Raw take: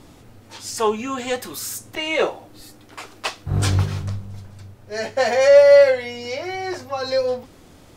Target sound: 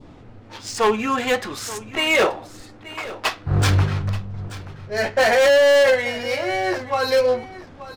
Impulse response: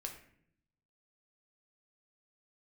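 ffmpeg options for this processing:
-af "adynamicequalizer=threshold=0.0224:dfrequency=1600:dqfactor=0.83:tfrequency=1600:tqfactor=0.83:attack=5:release=100:ratio=0.375:range=3:mode=boostabove:tftype=bell,adynamicsmooth=sensitivity=5.5:basefreq=3k,volume=15.5dB,asoftclip=hard,volume=-15.5dB,aecho=1:1:880:0.158,volume=3dB"

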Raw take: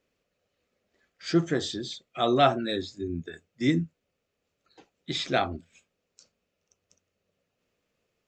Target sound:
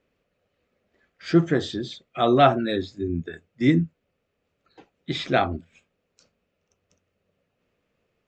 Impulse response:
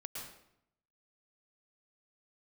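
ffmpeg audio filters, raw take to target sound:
-af "bass=f=250:g=2,treble=f=4k:g=-11,volume=4.5dB"

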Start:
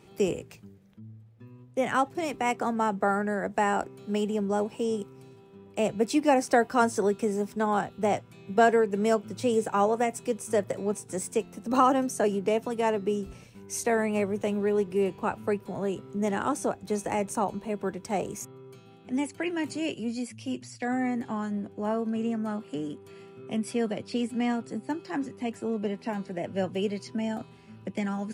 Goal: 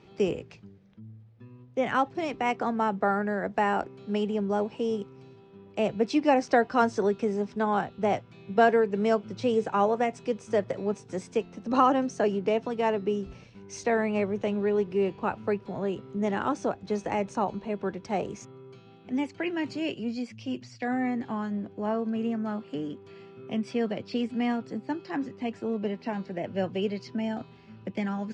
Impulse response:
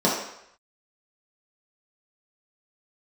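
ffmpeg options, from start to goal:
-af "lowpass=f=5.4k:w=0.5412,lowpass=f=5.4k:w=1.3066"

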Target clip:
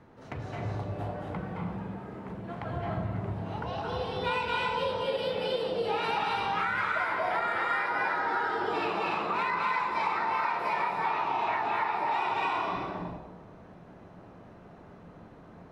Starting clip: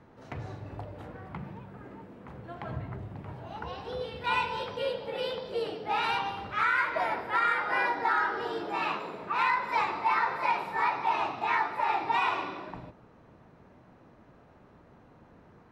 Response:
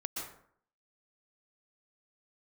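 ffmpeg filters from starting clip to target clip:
-filter_complex "[0:a]asettb=1/sr,asplit=3[a][b][c];[a]atrim=end=10.724[d];[b]atrim=start=10.72:end=11.95,asetpts=PTS-STARTPTS,afade=t=in:d=0.004:c=qsin,afade=t=out:st=1.226:d=0.004:c=qsin,acrossover=split=4600[e][f];[f]acompressor=threshold=-59dB:ratio=4:attack=1:release=60[g];[e][g]amix=inputs=2:normalize=0[h];[c]atrim=start=11.946[i];[d][h]acrossfade=d=0.004:c1=hsin:c2=qsin[j];[j][i]acrossfade=d=0.004:c1=qsin:c2=hsin[k];[1:a]atrim=start_sample=2205,asetrate=24255,aresample=44100[l];[k][l]afir=irnorm=-1:irlink=0,acompressor=threshold=-26dB:ratio=6"

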